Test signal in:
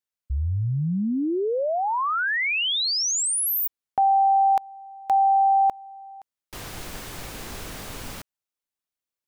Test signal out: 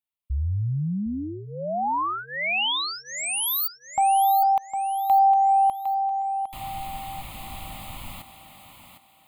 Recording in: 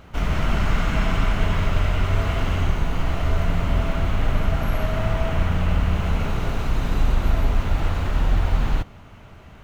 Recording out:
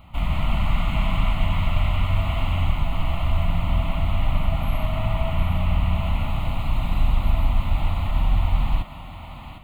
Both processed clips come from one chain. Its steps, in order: static phaser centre 1.6 kHz, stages 6; thinning echo 757 ms, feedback 33%, high-pass 190 Hz, level -8 dB

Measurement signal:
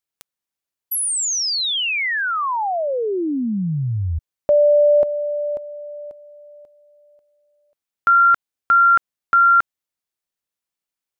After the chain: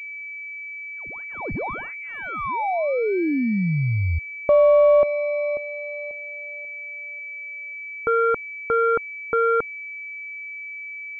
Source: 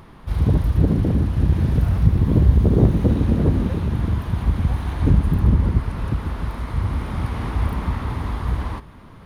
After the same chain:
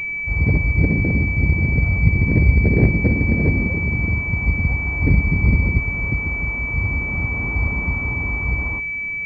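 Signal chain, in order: distance through air 170 m; class-D stage that switches slowly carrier 2.3 kHz

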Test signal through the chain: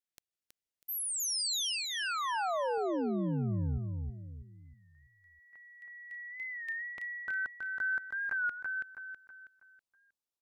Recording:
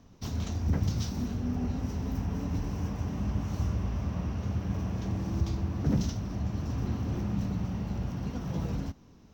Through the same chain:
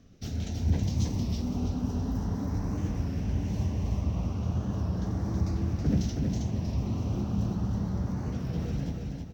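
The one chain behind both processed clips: treble shelf 11 kHz -5 dB; LFO notch saw up 0.36 Hz 900–3300 Hz; on a send: feedback delay 323 ms, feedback 38%, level -3.5 dB; on the sum: warped record 33 1/3 rpm, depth 100 cents

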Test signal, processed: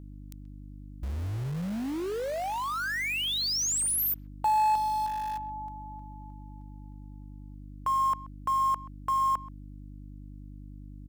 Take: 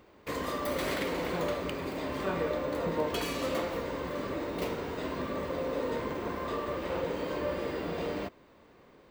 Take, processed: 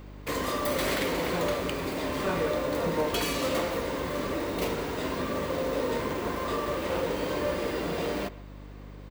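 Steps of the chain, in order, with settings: mains buzz 50 Hz, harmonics 6, -50 dBFS -5 dB/octave; treble shelf 3.5 kHz +4.5 dB; in parallel at -12 dB: integer overflow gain 34.5 dB; on the sum: speakerphone echo 130 ms, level -19 dB; hard clipper -24.5 dBFS; trim +3.5 dB

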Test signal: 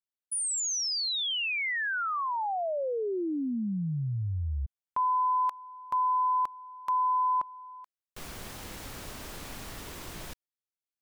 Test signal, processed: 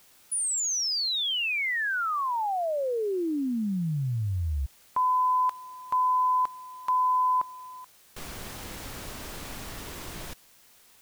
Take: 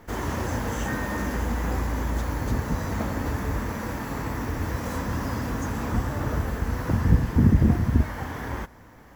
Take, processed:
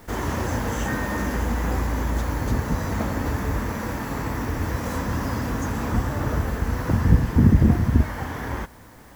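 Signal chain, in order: word length cut 10-bit, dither triangular; trim +2.5 dB

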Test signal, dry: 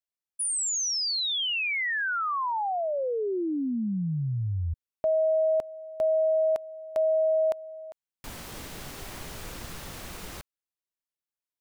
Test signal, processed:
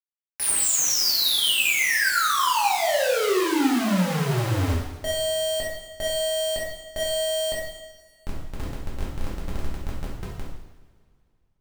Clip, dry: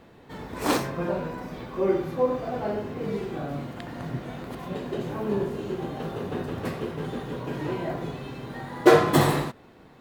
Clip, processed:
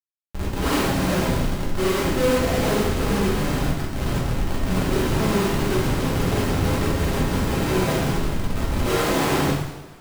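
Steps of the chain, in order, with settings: Schmitt trigger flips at -30 dBFS; two-slope reverb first 0.88 s, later 2.5 s, from -18 dB, DRR -6.5 dB

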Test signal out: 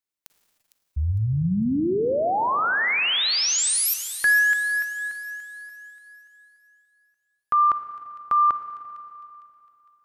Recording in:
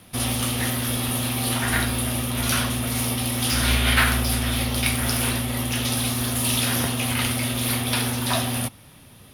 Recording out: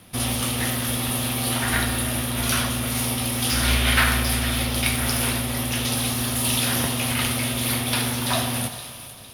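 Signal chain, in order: feedback echo behind a high-pass 456 ms, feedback 39%, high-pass 2.8 kHz, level -12 dB; Schroeder reverb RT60 2.8 s, DRR 9.5 dB

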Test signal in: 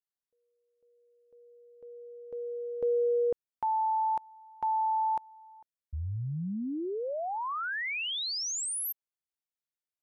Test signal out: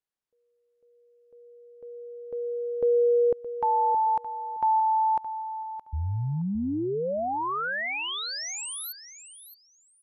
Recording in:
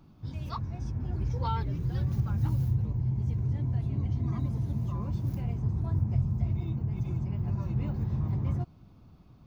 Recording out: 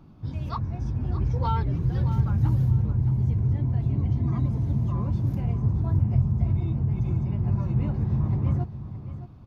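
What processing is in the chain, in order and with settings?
treble shelf 3.1 kHz -8.5 dB; on a send: feedback delay 619 ms, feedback 19%, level -12.5 dB; on the sum: resampled via 32 kHz; trim +5.5 dB

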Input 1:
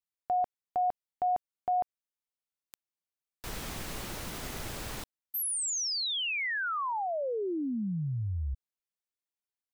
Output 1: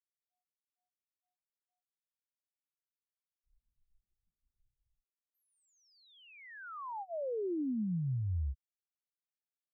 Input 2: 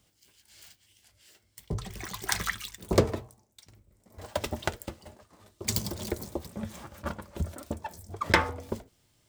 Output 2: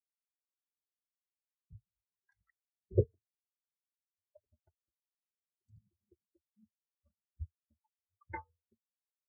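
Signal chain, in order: spectral noise reduction 20 dB; spectral contrast expander 4:1; trim -8 dB

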